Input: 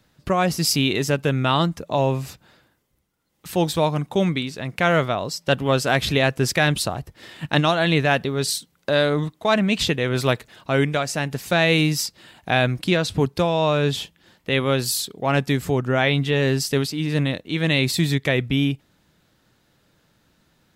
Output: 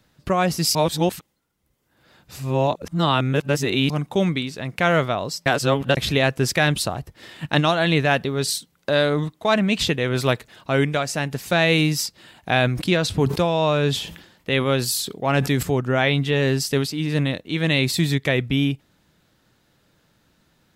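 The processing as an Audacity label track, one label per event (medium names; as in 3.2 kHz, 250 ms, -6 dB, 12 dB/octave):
0.750000	3.900000	reverse
5.460000	5.970000	reverse
12.500000	15.630000	decay stretcher at most 83 dB/s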